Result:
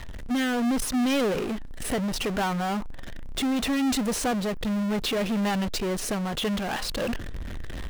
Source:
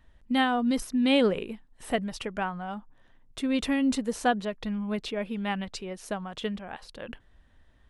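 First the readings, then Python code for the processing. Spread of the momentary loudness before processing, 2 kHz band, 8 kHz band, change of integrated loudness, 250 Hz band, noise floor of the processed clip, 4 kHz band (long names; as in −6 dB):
18 LU, +1.5 dB, +10.0 dB, +1.5 dB, +2.0 dB, −35 dBFS, +4.0 dB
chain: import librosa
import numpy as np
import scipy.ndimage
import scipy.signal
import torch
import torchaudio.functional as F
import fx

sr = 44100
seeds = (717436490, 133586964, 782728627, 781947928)

y = fx.recorder_agc(x, sr, target_db=-17.0, rise_db_per_s=6.9, max_gain_db=30)
y = fx.rotary(y, sr, hz=0.7)
y = fx.power_curve(y, sr, exponent=0.35)
y = y * 10.0 ** (-7.0 / 20.0)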